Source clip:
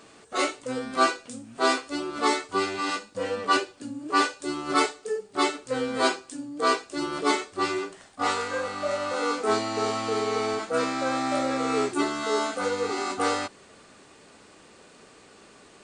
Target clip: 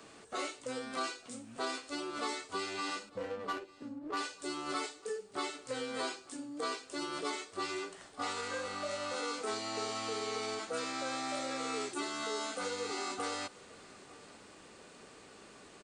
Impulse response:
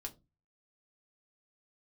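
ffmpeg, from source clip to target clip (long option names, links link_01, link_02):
-filter_complex "[0:a]acrossover=split=330|2400[link_01][link_02][link_03];[link_01]acompressor=threshold=-47dB:ratio=4[link_04];[link_02]acompressor=threshold=-36dB:ratio=4[link_05];[link_03]acompressor=threshold=-34dB:ratio=4[link_06];[link_04][link_05][link_06]amix=inputs=3:normalize=0,acrossover=split=230|1800[link_07][link_08][link_09];[link_09]alimiter=level_in=7.5dB:limit=-24dB:level=0:latency=1:release=26,volume=-7.5dB[link_10];[link_07][link_08][link_10]amix=inputs=3:normalize=0,asettb=1/sr,asplit=3[link_11][link_12][link_13];[link_11]atrim=end=3.094[link_14];[link_12]atrim=start=3.09:end=4.17,asetpts=PTS-STARTPTS,afade=type=in:duration=0.004:curve=qsin,afade=type=out:start_time=1.076:duration=0.004:curve=qsin,adynamicsmooth=sensitivity=4.5:basefreq=660[link_15];[link_13]atrim=start=4.166[link_16];[link_14][link_15]acrossfade=duration=0.004:curve1=hsin:curve2=qsin[link_17];[link_17][link_16]acrossfade=duration=0.004:curve1=qsin:curve2=hsin,aecho=1:1:899|1798:0.0708|0.0113,volume=-3dB"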